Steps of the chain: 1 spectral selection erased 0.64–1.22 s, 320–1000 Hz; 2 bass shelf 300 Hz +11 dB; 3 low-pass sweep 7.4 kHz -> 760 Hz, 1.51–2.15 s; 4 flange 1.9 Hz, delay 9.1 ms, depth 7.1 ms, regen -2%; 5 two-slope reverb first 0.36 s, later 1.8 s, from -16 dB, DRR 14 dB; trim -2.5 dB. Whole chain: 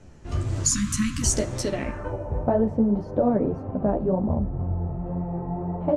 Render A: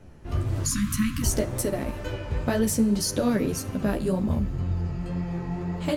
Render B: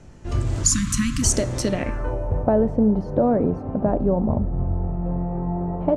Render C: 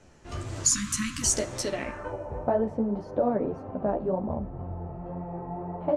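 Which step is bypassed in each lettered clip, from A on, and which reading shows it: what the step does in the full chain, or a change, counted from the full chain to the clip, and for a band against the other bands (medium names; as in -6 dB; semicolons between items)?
3, 2 kHz band +4.5 dB; 4, momentary loudness spread change -1 LU; 2, 125 Hz band -8.5 dB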